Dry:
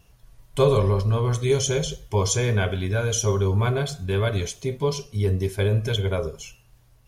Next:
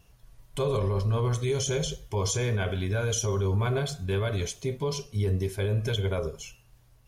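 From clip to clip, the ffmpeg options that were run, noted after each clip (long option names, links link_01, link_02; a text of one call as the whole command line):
ffmpeg -i in.wav -af "alimiter=limit=-16.5dB:level=0:latency=1:release=41,volume=-2.5dB" out.wav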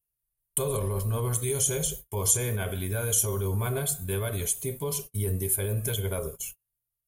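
ffmpeg -i in.wav -af "aexciter=amount=14.8:drive=6.7:freq=8100,agate=range=-34dB:threshold=-35dB:ratio=16:detection=peak,volume=-2.5dB" out.wav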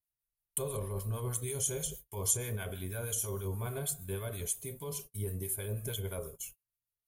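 ffmpeg -i in.wav -filter_complex "[0:a]acrossover=split=960[link_01][link_02];[link_01]aeval=exprs='val(0)*(1-0.5/2+0.5/2*cos(2*PI*6.3*n/s))':channel_layout=same[link_03];[link_02]aeval=exprs='val(0)*(1-0.5/2-0.5/2*cos(2*PI*6.3*n/s))':channel_layout=same[link_04];[link_03][link_04]amix=inputs=2:normalize=0,volume=-6dB" out.wav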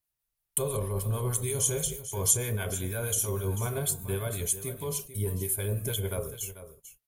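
ffmpeg -i in.wav -af "aecho=1:1:442:0.224,volume=6dB" out.wav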